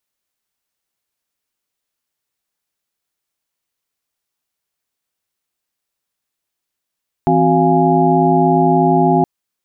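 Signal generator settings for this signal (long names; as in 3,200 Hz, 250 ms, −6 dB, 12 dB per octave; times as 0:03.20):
held notes E3/C4/F#4/F5/G#5 sine, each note −16 dBFS 1.97 s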